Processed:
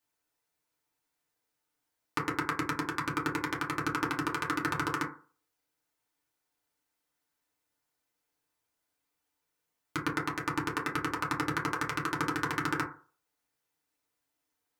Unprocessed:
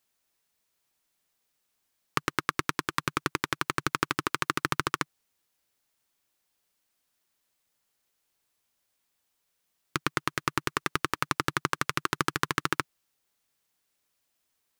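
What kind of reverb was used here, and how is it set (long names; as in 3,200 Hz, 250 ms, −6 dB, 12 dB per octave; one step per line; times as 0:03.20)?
feedback delay network reverb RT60 0.41 s, low-frequency decay 0.85×, high-frequency decay 0.3×, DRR −4.5 dB
level −8.5 dB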